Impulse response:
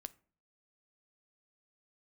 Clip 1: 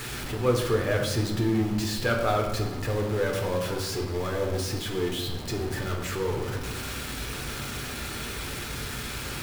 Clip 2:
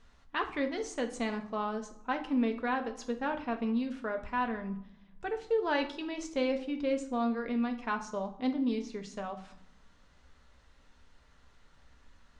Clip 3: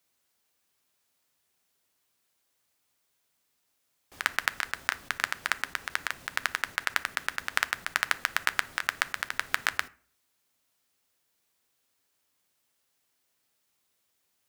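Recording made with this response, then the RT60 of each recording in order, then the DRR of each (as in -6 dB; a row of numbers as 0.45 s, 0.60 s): 3; 1.2 s, 0.75 s, 0.45 s; 0.0 dB, 4.5 dB, 14.0 dB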